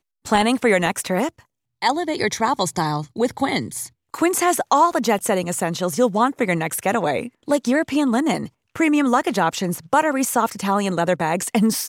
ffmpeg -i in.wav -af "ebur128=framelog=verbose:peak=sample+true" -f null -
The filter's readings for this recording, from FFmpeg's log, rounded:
Integrated loudness:
  I:         -20.4 LUFS
  Threshold: -30.6 LUFS
Loudness range:
  LRA:         2.2 LU
  Threshold: -40.7 LUFS
  LRA low:   -22.1 LUFS
  LRA high:  -19.8 LUFS
Sample peak:
  Peak:       -4.7 dBFS
True peak:
  Peak:       -4.7 dBFS